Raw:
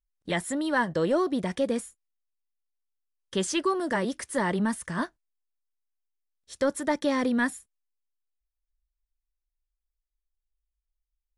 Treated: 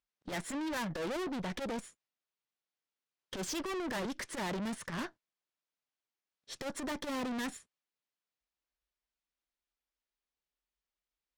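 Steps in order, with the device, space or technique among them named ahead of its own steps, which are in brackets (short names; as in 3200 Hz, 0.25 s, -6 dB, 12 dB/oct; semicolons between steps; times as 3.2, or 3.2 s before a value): valve radio (BPF 140–4900 Hz; tube stage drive 41 dB, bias 0.45; core saturation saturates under 110 Hz); gain +6.5 dB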